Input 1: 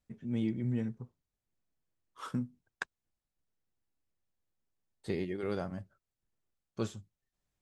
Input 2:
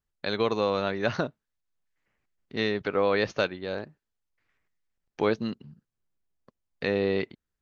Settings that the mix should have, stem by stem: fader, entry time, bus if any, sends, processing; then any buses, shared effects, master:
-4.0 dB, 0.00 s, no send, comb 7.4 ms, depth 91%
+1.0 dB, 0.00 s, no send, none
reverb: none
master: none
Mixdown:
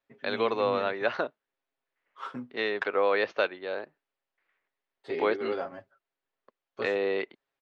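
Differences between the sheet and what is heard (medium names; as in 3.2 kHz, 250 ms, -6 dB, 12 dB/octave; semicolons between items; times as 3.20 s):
stem 1 -4.0 dB -> +3.5 dB; master: extra three-band isolator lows -23 dB, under 340 Hz, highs -24 dB, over 3.9 kHz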